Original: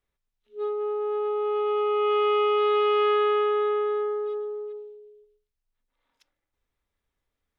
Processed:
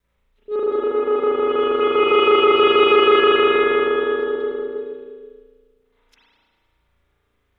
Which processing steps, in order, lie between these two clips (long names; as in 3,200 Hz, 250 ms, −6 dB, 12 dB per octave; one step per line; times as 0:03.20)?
slices reordered back to front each 80 ms, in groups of 2
notch filter 820 Hz, Q 26
spring reverb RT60 1.6 s, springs 35 ms, chirp 75 ms, DRR −9 dB
level +6 dB